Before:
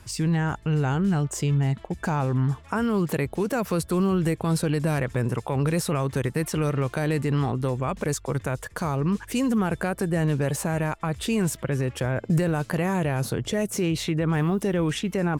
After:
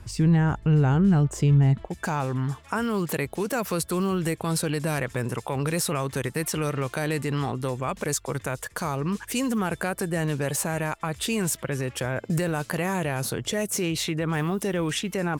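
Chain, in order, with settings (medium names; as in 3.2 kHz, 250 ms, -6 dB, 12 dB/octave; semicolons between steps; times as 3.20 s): tilt EQ -1.5 dB/octave, from 1.86 s +1.5 dB/octave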